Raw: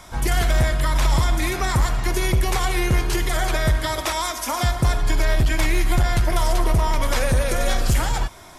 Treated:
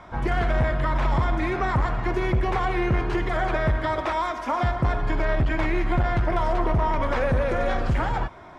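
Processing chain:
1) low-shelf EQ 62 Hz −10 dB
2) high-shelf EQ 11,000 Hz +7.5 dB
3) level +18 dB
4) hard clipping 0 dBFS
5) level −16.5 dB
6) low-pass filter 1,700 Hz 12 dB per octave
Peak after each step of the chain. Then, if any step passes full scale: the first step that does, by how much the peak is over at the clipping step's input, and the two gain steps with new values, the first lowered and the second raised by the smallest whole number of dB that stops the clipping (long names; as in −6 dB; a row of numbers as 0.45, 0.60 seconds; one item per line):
−10.5, −10.0, +8.0, 0.0, −16.5, −16.0 dBFS
step 3, 8.0 dB
step 3 +10 dB, step 5 −8.5 dB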